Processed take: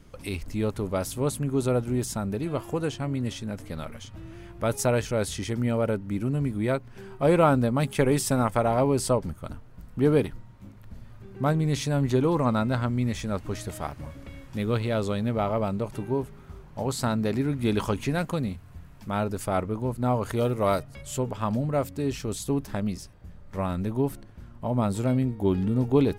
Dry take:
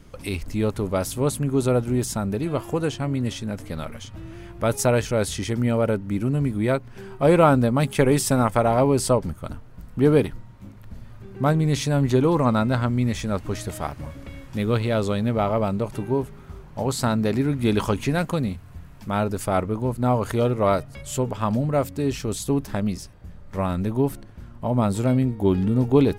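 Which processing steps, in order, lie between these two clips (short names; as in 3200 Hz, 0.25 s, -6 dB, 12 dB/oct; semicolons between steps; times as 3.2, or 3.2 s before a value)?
20.36–20.78 high shelf 10000 Hz -> 5100 Hz +12 dB; gain -4 dB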